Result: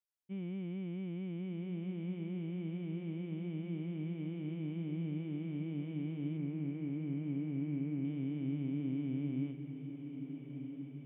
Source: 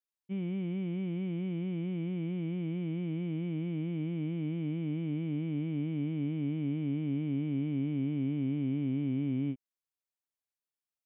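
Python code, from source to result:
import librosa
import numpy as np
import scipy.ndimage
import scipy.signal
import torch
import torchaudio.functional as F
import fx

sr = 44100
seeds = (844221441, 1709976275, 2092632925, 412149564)

p1 = fx.steep_lowpass(x, sr, hz=2500.0, slope=36, at=(6.37, 8.05))
p2 = p1 + fx.echo_diffused(p1, sr, ms=1388, feedback_pct=54, wet_db=-8.0, dry=0)
y = p2 * librosa.db_to_amplitude(-6.0)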